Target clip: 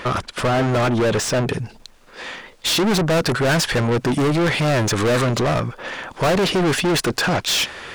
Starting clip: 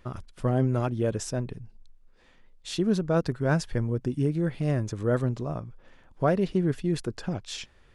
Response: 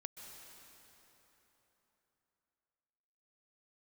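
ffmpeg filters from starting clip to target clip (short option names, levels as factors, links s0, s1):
-filter_complex "[0:a]asetnsamples=n=441:p=0,asendcmd='1.49 lowpass f 7200',asplit=2[s0][s1];[s1]highpass=f=720:p=1,volume=79.4,asoftclip=type=tanh:threshold=0.282[s2];[s0][s2]amix=inputs=2:normalize=0,lowpass=f=3300:p=1,volume=0.501"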